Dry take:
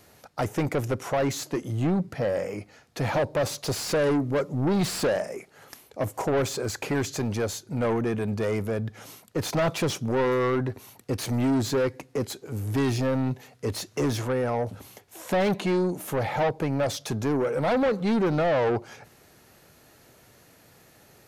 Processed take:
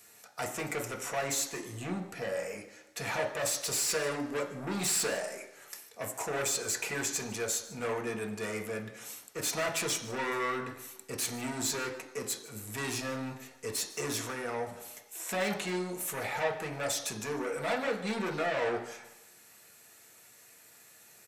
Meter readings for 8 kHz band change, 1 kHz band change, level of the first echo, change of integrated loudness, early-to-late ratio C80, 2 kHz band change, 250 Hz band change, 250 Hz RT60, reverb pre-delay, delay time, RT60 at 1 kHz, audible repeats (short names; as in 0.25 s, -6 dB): +4.5 dB, -6.0 dB, -19.5 dB, -6.5 dB, 12.0 dB, -1.5 dB, -12.0 dB, 0.85 s, 3 ms, 0.152 s, 0.95 s, 1